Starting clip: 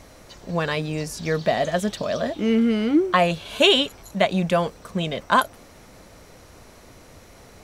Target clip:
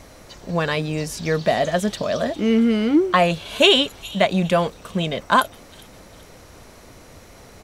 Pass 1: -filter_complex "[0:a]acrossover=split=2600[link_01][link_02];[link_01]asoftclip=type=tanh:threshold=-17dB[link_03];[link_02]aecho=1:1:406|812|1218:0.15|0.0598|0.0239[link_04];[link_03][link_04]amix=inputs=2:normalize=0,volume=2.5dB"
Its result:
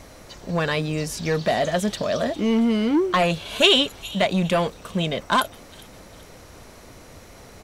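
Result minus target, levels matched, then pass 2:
soft clipping: distortion +15 dB
-filter_complex "[0:a]acrossover=split=2600[link_01][link_02];[link_01]asoftclip=type=tanh:threshold=-6dB[link_03];[link_02]aecho=1:1:406|812|1218:0.15|0.0598|0.0239[link_04];[link_03][link_04]amix=inputs=2:normalize=0,volume=2.5dB"

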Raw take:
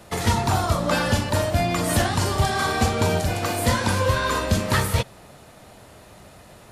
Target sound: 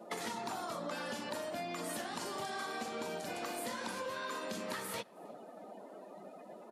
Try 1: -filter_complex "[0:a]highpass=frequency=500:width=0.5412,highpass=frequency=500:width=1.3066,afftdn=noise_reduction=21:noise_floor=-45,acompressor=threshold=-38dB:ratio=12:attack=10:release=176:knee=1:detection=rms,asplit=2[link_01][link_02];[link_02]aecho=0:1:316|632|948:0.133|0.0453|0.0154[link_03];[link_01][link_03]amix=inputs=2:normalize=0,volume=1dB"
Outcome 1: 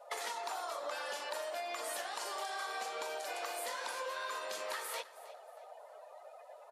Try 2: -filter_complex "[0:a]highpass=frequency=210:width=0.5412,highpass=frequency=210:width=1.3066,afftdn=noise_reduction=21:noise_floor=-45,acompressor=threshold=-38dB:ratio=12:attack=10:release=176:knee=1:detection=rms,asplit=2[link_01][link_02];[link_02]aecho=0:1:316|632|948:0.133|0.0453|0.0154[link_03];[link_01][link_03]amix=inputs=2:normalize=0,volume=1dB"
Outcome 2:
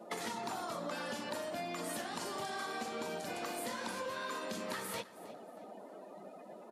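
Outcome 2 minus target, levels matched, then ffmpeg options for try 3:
echo-to-direct +11 dB
-filter_complex "[0:a]highpass=frequency=210:width=0.5412,highpass=frequency=210:width=1.3066,afftdn=noise_reduction=21:noise_floor=-45,acompressor=threshold=-38dB:ratio=12:attack=10:release=176:knee=1:detection=rms,asplit=2[link_01][link_02];[link_02]aecho=0:1:316|632:0.0376|0.0128[link_03];[link_01][link_03]amix=inputs=2:normalize=0,volume=1dB"

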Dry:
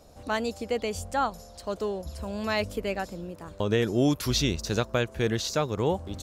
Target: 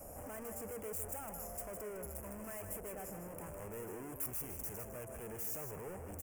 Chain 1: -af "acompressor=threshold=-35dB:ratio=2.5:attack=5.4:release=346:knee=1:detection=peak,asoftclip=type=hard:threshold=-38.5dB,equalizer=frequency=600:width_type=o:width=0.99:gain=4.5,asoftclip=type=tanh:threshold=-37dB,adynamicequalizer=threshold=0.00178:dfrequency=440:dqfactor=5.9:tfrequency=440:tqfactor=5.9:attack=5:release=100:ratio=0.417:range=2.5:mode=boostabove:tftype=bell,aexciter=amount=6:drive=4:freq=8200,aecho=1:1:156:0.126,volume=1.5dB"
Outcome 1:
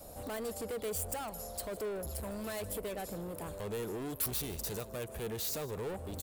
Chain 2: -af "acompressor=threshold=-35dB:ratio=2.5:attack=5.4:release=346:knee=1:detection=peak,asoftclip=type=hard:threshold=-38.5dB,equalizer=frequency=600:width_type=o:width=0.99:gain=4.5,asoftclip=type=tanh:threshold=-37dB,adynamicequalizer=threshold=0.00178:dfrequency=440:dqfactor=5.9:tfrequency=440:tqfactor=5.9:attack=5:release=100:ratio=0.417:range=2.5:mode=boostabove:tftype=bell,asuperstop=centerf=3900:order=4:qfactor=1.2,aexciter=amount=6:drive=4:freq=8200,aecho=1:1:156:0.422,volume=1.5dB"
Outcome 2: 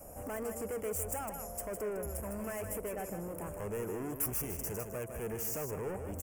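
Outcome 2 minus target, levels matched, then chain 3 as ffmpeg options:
hard clipping: distortion −5 dB
-af "acompressor=threshold=-35dB:ratio=2.5:attack=5.4:release=346:knee=1:detection=peak,asoftclip=type=hard:threshold=-49.5dB,equalizer=frequency=600:width_type=o:width=0.99:gain=4.5,asoftclip=type=tanh:threshold=-37dB,adynamicequalizer=threshold=0.00178:dfrequency=440:dqfactor=5.9:tfrequency=440:tqfactor=5.9:attack=5:release=100:ratio=0.417:range=2.5:mode=boostabove:tftype=bell,asuperstop=centerf=3900:order=4:qfactor=1.2,aexciter=amount=6:drive=4:freq=8200,aecho=1:1:156:0.422,volume=1.5dB"

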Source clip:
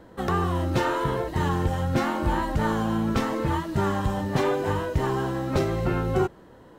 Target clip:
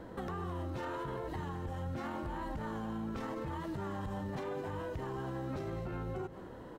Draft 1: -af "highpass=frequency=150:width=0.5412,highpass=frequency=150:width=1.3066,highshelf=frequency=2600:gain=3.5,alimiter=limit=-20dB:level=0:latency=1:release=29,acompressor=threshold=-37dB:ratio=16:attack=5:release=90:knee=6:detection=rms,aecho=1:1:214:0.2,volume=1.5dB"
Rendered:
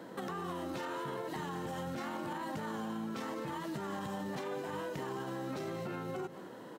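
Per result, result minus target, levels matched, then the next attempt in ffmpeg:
4,000 Hz band +5.5 dB; 125 Hz band −5.5 dB
-af "highpass=frequency=150:width=0.5412,highpass=frequency=150:width=1.3066,highshelf=frequency=2600:gain=-5,alimiter=limit=-20dB:level=0:latency=1:release=29,acompressor=threshold=-37dB:ratio=16:attack=5:release=90:knee=6:detection=rms,aecho=1:1:214:0.2,volume=1.5dB"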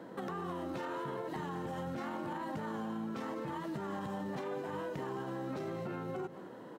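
125 Hz band −5.0 dB
-af "highshelf=frequency=2600:gain=-5,alimiter=limit=-20dB:level=0:latency=1:release=29,acompressor=threshold=-37dB:ratio=16:attack=5:release=90:knee=6:detection=rms,aecho=1:1:214:0.2,volume=1.5dB"

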